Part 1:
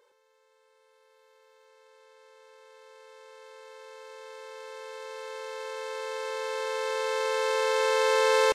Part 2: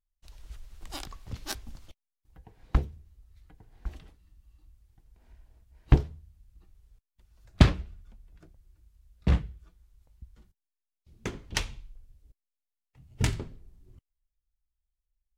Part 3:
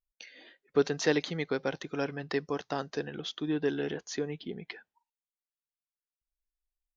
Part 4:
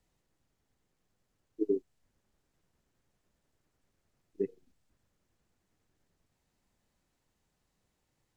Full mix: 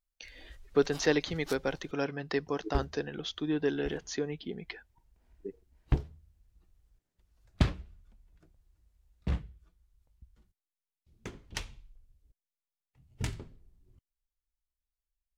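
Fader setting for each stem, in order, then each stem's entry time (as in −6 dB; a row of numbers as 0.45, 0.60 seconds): muted, −8.0 dB, 0.0 dB, −8.5 dB; muted, 0.00 s, 0.00 s, 1.05 s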